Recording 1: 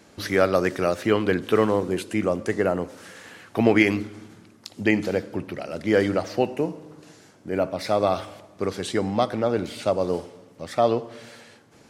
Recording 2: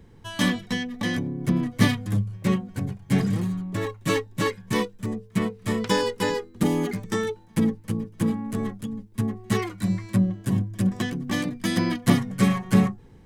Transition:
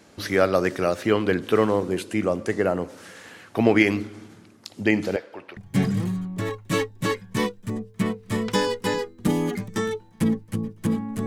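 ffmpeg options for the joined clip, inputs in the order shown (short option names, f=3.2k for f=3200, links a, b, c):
-filter_complex "[0:a]asettb=1/sr,asplit=3[a][b][c];[a]atrim=end=5.164[d];[b]atrim=start=5.16:end=5.57,asetpts=PTS-STARTPTS,afade=t=in:d=0.004:c=qsin,afade=t=out:st=0.406:d=0.004:c=qsin,acrossover=split=480 4300:gain=0.0794 1 0.224[e][f][g];[e][f][g]amix=inputs=3:normalize=0[h];[c]atrim=start=5.566[i];[d][h]acrossfade=d=0.004:c1=hsin:c2=qsin[j];[j][i]acrossfade=d=0.004:c1=qsin:c2=hsin,apad=whole_dur=11.26,atrim=end=11.26,atrim=end=5.572[k];[1:a]atrim=start=2.928:end=8.62[l];[k][l]acrossfade=d=0.004:c1=hsin:c2=hsin"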